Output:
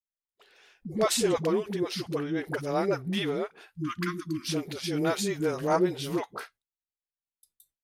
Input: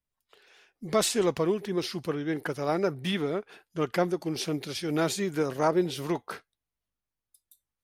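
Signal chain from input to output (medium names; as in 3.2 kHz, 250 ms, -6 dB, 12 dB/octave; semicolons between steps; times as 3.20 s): phase dispersion highs, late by 85 ms, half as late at 340 Hz; spectral selection erased 3.76–4.51 s, 350–980 Hz; gate with hold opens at -51 dBFS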